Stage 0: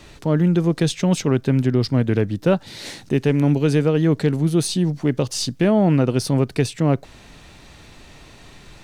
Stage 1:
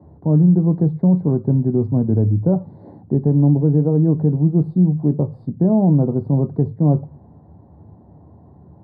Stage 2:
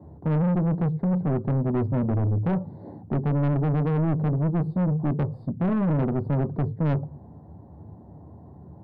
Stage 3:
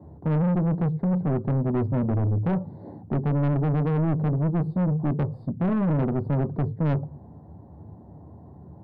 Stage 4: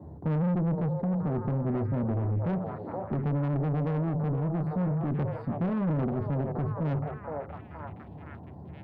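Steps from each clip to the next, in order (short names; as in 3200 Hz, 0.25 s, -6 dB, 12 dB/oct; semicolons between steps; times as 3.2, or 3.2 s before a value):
inverse Chebyshev low-pass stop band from 2300 Hz, stop band 40 dB; reverb RT60 0.35 s, pre-delay 3 ms, DRR 10 dB; maximiser -6 dB; gain -5.5 dB
soft clip -20.5 dBFS, distortion -7 dB
nothing audible
delay with a stepping band-pass 0.47 s, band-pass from 630 Hz, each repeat 0.7 oct, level -3 dB; added harmonics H 6 -36 dB, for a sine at -16 dBFS; limiter -25 dBFS, peak gain reduction 9 dB; gain +1 dB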